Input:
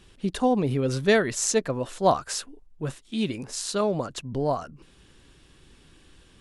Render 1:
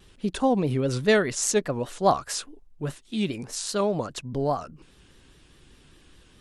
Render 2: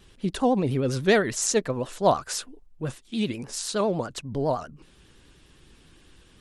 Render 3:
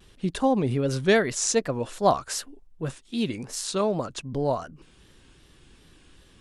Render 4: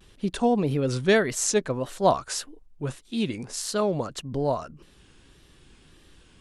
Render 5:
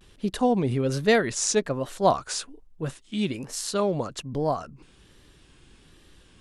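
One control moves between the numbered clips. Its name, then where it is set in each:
vibrato, rate: 4.9, 9.9, 2.6, 1.7, 1.2 Hz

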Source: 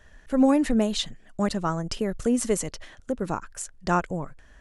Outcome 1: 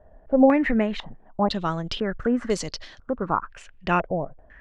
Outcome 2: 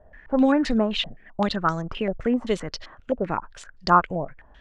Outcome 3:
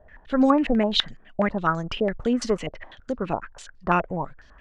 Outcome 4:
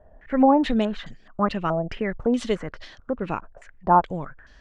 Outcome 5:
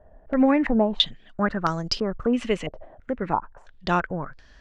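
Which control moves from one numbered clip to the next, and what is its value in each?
stepped low-pass, rate: 2, 7.7, 12, 4.7, 3 Hz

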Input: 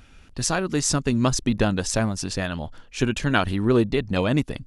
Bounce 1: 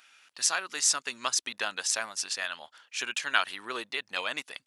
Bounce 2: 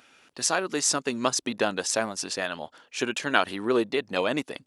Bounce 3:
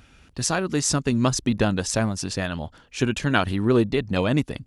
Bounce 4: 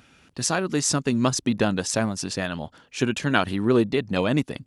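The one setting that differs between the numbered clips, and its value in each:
HPF, cutoff: 1300, 400, 46, 130 Hz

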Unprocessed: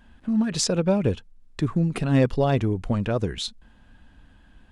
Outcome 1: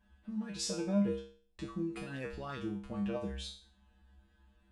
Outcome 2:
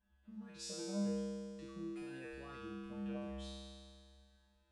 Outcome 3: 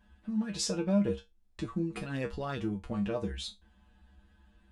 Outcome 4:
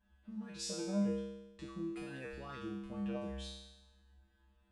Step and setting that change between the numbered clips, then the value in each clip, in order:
resonator, decay: 0.45, 2.1, 0.19, 1 s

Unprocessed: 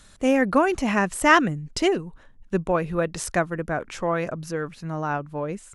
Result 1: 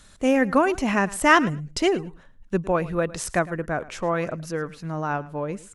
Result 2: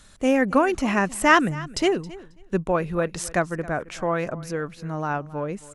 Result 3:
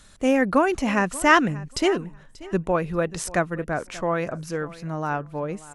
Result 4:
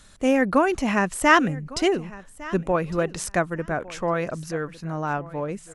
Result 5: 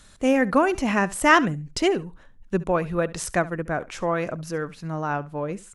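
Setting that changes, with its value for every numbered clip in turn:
feedback echo, time: 108, 270, 585, 1156, 69 ms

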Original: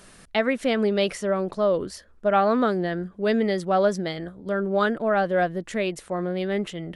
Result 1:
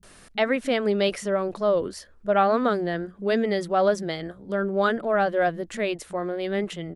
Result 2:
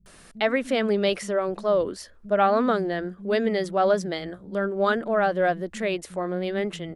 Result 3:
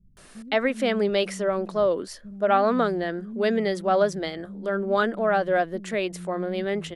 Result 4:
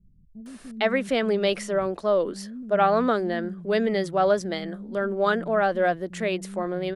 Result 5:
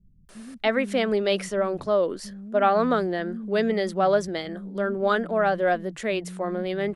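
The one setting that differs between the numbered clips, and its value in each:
bands offset in time, time: 30, 60, 170, 460, 290 ms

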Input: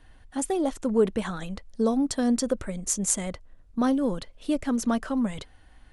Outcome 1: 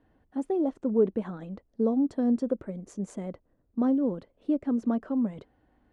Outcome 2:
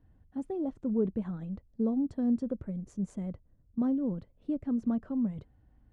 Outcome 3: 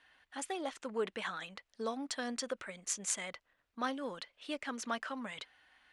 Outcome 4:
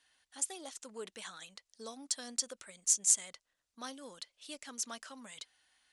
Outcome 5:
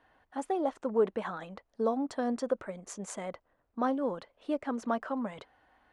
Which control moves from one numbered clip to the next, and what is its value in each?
band-pass, frequency: 320, 130, 2300, 6300, 850 Hz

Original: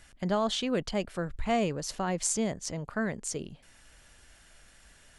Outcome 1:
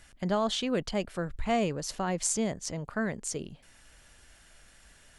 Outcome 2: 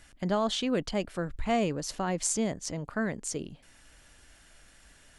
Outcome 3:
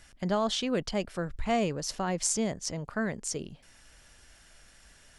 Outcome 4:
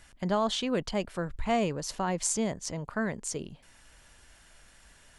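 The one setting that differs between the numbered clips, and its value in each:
bell, frequency: 16000, 290, 5400, 970 Hz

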